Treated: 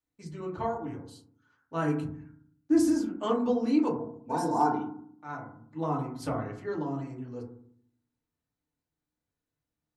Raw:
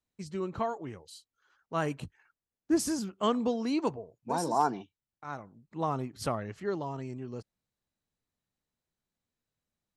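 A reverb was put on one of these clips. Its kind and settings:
feedback delay network reverb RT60 0.6 s, low-frequency decay 1.5×, high-frequency decay 0.25×, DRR −3.5 dB
level −6 dB

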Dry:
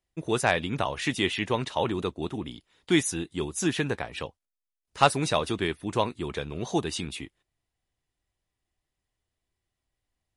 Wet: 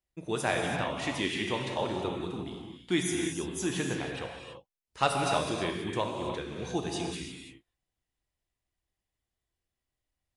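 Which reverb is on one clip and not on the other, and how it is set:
reverb whose tail is shaped and stops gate 360 ms flat, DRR 0.5 dB
level −6.5 dB

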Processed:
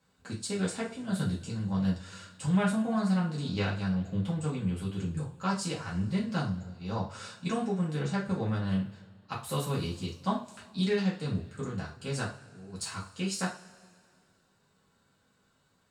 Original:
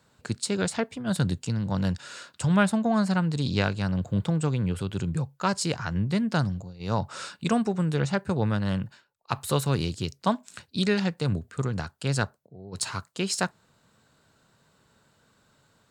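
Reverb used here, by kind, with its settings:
coupled-rooms reverb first 0.32 s, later 2.1 s, from −22 dB, DRR −6 dB
level −13 dB

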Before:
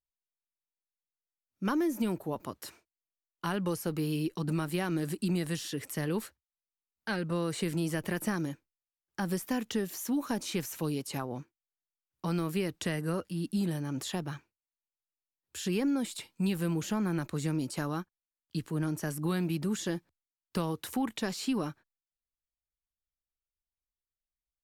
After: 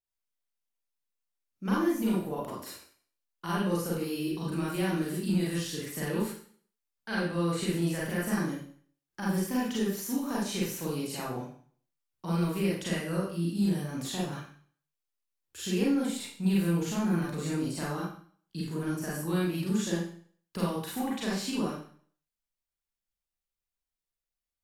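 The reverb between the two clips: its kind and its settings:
four-comb reverb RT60 0.5 s, combs from 32 ms, DRR −6.5 dB
level −5.5 dB

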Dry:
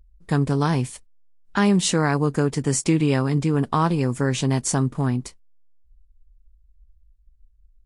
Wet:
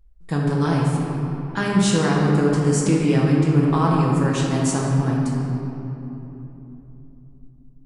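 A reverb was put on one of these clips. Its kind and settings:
rectangular room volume 180 cubic metres, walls hard, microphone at 0.67 metres
level −4 dB

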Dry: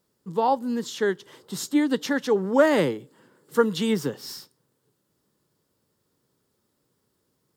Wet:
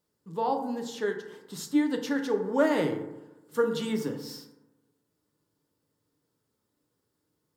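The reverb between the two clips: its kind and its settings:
feedback delay network reverb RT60 0.98 s, low-frequency decay 1.05×, high-frequency decay 0.4×, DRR 3.5 dB
level −7.5 dB

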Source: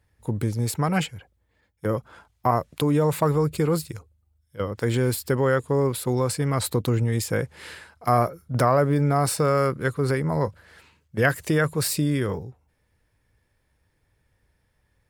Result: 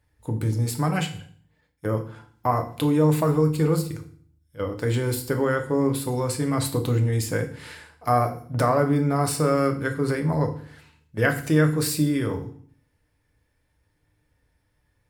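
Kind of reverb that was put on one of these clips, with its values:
feedback delay network reverb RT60 0.49 s, low-frequency decay 1.45×, high-frequency decay 1×, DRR 4 dB
level −2.5 dB

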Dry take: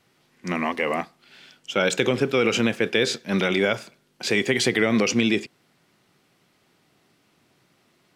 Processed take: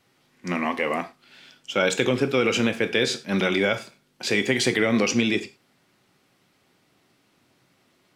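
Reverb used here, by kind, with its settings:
reverb whose tail is shaped and stops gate 130 ms falling, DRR 8.5 dB
level −1 dB

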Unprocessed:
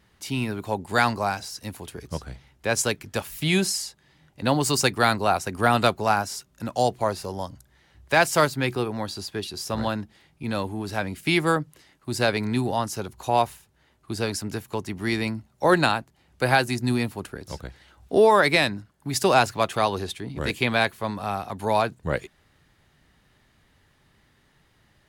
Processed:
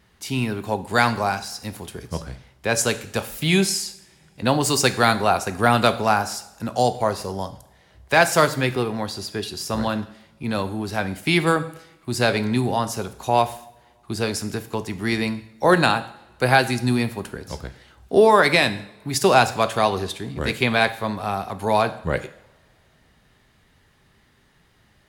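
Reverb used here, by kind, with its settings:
coupled-rooms reverb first 0.63 s, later 3.3 s, from −28 dB, DRR 10 dB
level +2.5 dB

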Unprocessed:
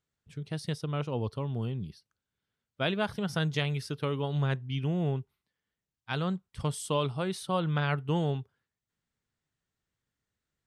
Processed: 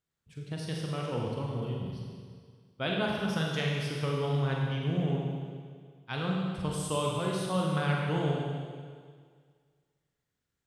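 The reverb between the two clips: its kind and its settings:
four-comb reverb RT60 1.9 s, combs from 33 ms, DRR −2 dB
level −3.5 dB

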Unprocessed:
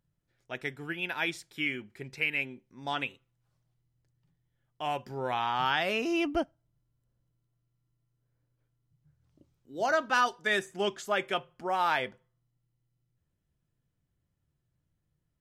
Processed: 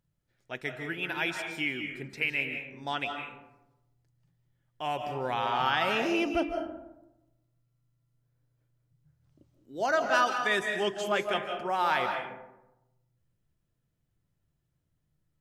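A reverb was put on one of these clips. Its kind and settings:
comb and all-pass reverb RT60 0.97 s, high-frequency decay 0.4×, pre-delay 120 ms, DRR 4.5 dB

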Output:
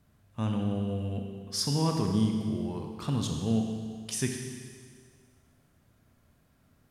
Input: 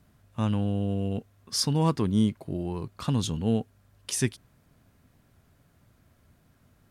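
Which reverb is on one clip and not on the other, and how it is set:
four-comb reverb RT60 1.9 s, combs from 28 ms, DRR 2.5 dB
level −4.5 dB

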